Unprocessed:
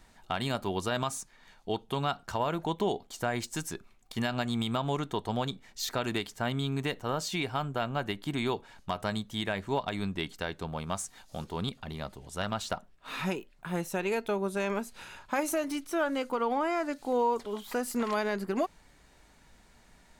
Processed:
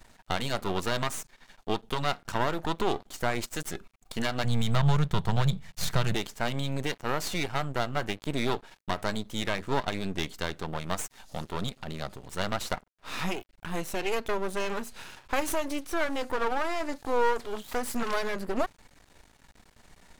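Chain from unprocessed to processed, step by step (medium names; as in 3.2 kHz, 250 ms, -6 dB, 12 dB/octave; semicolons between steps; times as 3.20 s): half-wave rectifier; 4.44–6.15 s: resonant low shelf 210 Hz +8 dB, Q 3; trim +6 dB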